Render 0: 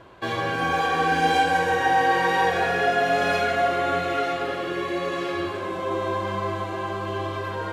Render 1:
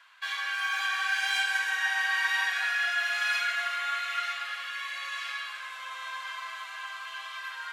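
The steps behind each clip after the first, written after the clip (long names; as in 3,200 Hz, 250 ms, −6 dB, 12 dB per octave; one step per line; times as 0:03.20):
high-pass filter 1,400 Hz 24 dB per octave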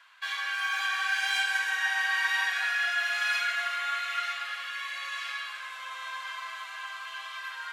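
no processing that can be heard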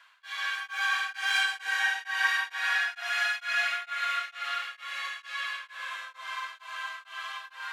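comb and all-pass reverb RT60 2.3 s, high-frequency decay 0.7×, pre-delay 100 ms, DRR 1 dB
tremolo along a rectified sine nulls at 2.2 Hz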